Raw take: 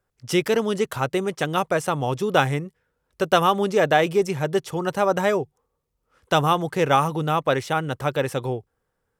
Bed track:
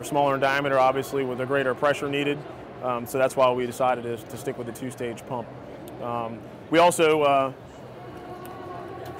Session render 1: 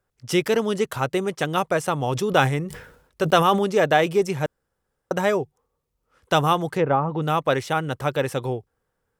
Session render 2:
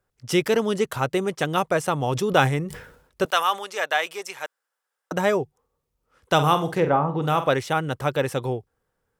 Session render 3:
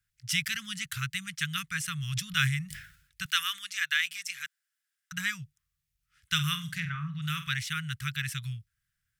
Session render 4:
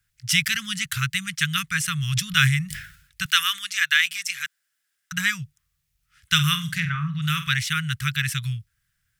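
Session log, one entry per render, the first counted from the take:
0:02.11–0:03.59: level that may fall only so fast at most 79 dB per second; 0:04.46–0:05.11: fill with room tone; 0:06.74–0:07.22: treble cut that deepens with the level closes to 940 Hz, closed at −15.5 dBFS
0:03.25–0:05.12: high-pass filter 980 Hz; 0:06.34–0:07.50: flutter between parallel walls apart 8.1 metres, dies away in 0.3 s
inverse Chebyshev band-stop filter 290–860 Hz, stop band 50 dB; low-shelf EQ 170 Hz −6 dB
level +8.5 dB; brickwall limiter −3 dBFS, peak gain reduction 1 dB

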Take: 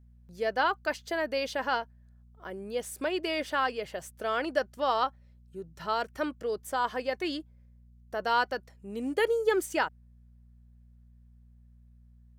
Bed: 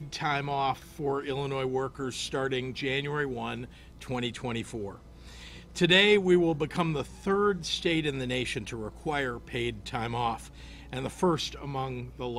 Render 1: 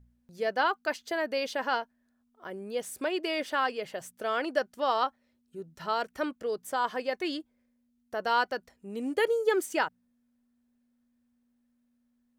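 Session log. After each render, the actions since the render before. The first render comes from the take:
hum removal 60 Hz, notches 3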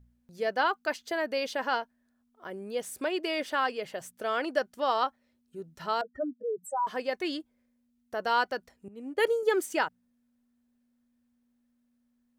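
0:06.01–0:06.87: expanding power law on the bin magnitudes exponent 3.5
0:08.88–0:09.43: multiband upward and downward expander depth 100%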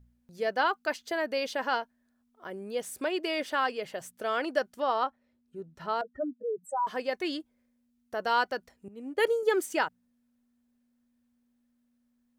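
0:04.82–0:06.69: high-shelf EQ 3,100 Hz −10 dB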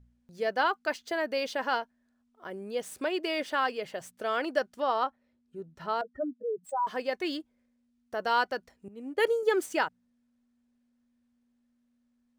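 running median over 3 samples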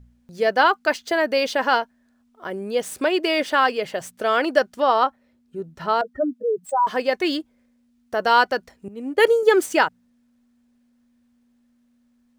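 level +10 dB

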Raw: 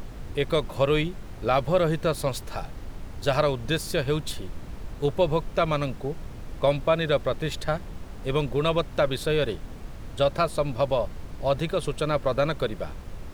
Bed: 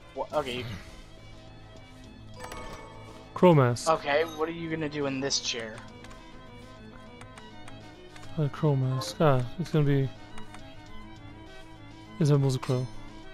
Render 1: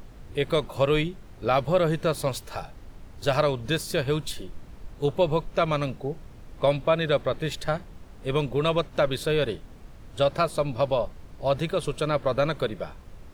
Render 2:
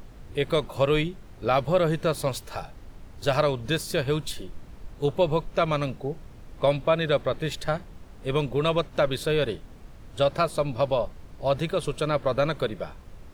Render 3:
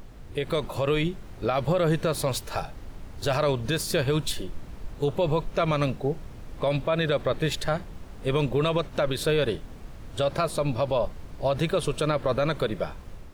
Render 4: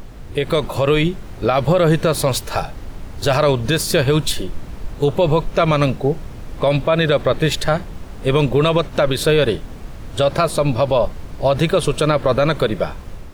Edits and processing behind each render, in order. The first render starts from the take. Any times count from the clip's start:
noise reduction from a noise print 7 dB
no processing that can be heard
brickwall limiter −19.5 dBFS, peak gain reduction 10 dB; automatic gain control gain up to 4 dB
level +9 dB

